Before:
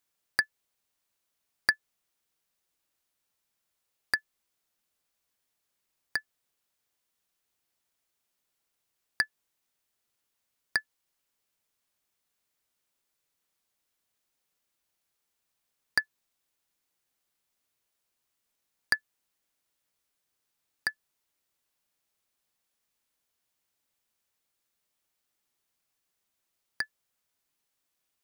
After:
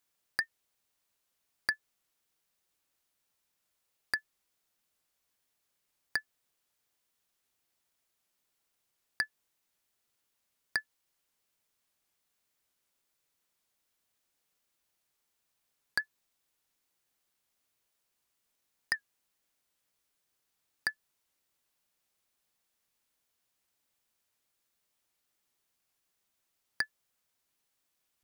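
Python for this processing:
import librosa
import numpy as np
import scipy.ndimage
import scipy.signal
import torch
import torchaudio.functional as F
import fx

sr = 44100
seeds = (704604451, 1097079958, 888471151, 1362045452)

p1 = fx.over_compress(x, sr, threshold_db=-29.0, ratio=-1.0)
p2 = x + (p1 * 10.0 ** (1.0 / 20.0))
p3 = fx.record_warp(p2, sr, rpm=78.0, depth_cents=100.0)
y = p3 * 10.0 ** (-8.5 / 20.0)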